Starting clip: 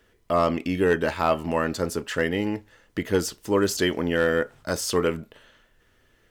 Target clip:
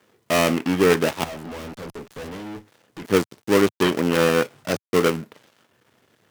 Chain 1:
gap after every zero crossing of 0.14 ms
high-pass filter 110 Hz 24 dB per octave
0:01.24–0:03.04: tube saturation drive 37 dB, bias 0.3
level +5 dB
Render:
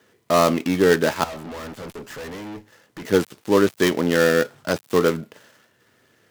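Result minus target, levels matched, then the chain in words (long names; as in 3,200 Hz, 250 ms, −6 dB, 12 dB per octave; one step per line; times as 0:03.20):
gap after every zero crossing: distortion −7 dB
gap after every zero crossing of 0.31 ms
high-pass filter 110 Hz 24 dB per octave
0:01.24–0:03.04: tube saturation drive 37 dB, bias 0.3
level +5 dB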